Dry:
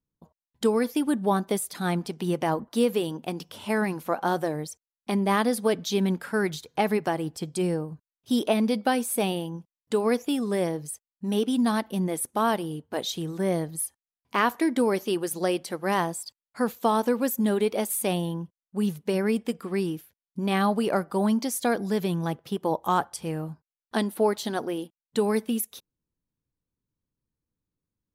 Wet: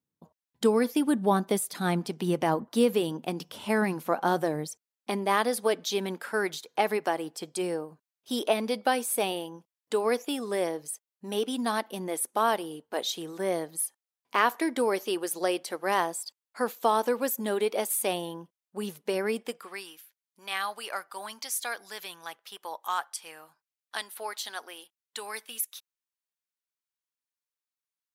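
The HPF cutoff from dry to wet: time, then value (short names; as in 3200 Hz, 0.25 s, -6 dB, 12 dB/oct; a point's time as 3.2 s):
4.64 s 130 Hz
5.28 s 380 Hz
19.41 s 380 Hz
19.85 s 1300 Hz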